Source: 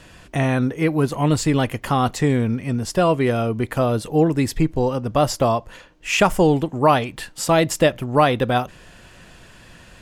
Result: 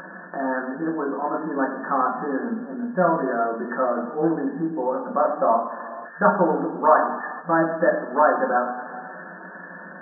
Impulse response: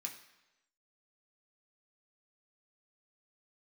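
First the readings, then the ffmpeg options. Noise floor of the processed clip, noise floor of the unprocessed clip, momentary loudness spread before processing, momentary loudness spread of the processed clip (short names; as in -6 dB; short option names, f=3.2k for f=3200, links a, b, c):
-40 dBFS, -47 dBFS, 6 LU, 16 LU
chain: -filter_complex "[1:a]atrim=start_sample=2205,asetrate=32634,aresample=44100[a];[0:a][a]afir=irnorm=-1:irlink=0,acompressor=mode=upward:threshold=-23dB:ratio=2.5,bandreject=f=50:t=h:w=6,bandreject=f=100:t=h:w=6,bandreject=f=150:t=h:w=6,bandreject=f=200:t=h:w=6,bandreject=f=250:t=h:w=6,bandreject=f=300:t=h:w=6,bandreject=f=350:t=h:w=6,bandreject=f=400:t=h:w=6,bandreject=f=450:t=h:w=6,afftfilt=real='re*between(b*sr/4096,170,1800)':imag='im*between(b*sr/4096,170,1800)':win_size=4096:overlap=0.75,adynamicequalizer=threshold=0.0355:dfrequency=1200:dqfactor=1.1:tfrequency=1200:tqfactor=1.1:attack=5:release=100:ratio=0.375:range=1.5:mode=boostabove:tftype=bell"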